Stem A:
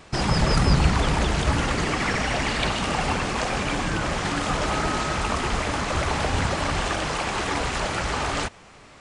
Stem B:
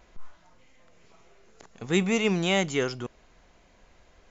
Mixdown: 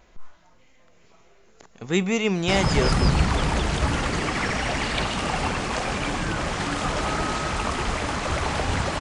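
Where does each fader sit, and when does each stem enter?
-1.0 dB, +1.5 dB; 2.35 s, 0.00 s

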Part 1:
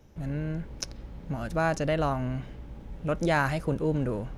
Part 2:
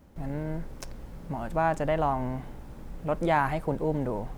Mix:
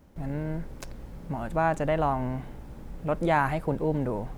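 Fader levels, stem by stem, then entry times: -12.0 dB, -1.0 dB; 0.00 s, 0.00 s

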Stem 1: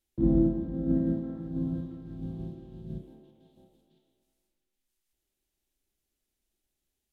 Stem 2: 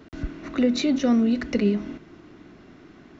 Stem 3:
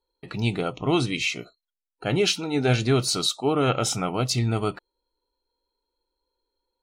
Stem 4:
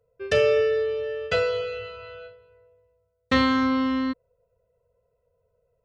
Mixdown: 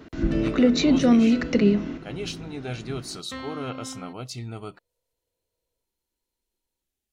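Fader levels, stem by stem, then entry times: -2.0 dB, +2.5 dB, -11.5 dB, -16.0 dB; 0.00 s, 0.00 s, 0.00 s, 0.00 s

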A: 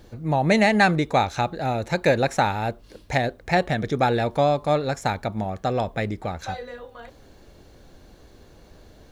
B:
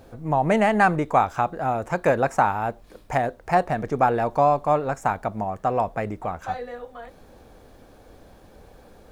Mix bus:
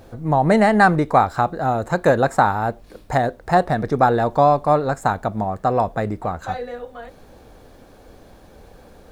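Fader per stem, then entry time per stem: -7.0 dB, +3.0 dB; 0.00 s, 0.00 s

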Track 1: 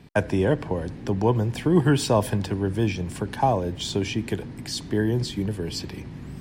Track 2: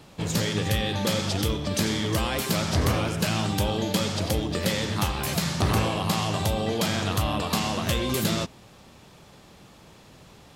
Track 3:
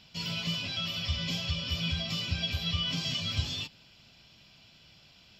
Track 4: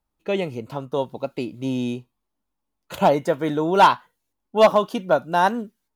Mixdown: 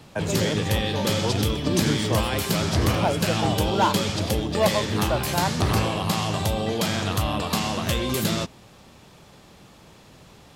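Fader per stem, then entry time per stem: -7.0 dB, +1.0 dB, -7.0 dB, -8.0 dB; 0.00 s, 0.00 s, 0.70 s, 0.00 s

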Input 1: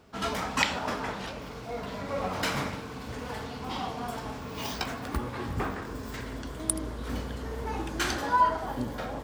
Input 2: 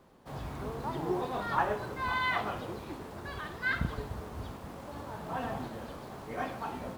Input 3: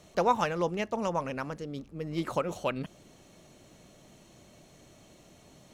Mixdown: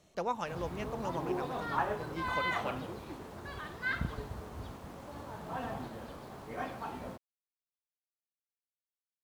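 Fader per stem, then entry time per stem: mute, -3.0 dB, -9.0 dB; mute, 0.20 s, 0.00 s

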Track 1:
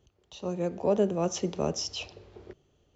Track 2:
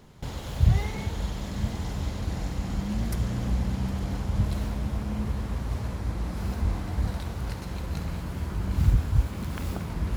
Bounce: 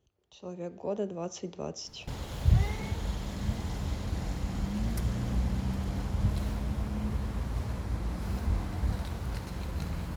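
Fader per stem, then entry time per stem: -8.0 dB, -3.0 dB; 0.00 s, 1.85 s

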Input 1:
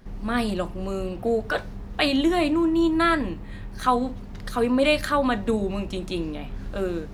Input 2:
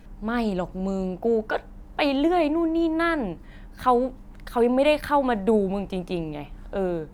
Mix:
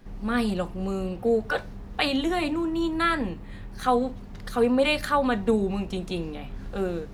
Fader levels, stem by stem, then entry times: -2.5 dB, -9.0 dB; 0.00 s, 0.00 s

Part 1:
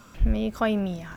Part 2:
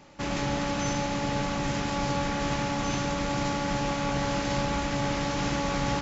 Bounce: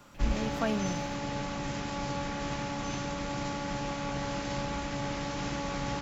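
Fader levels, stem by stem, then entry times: -7.0 dB, -6.0 dB; 0.00 s, 0.00 s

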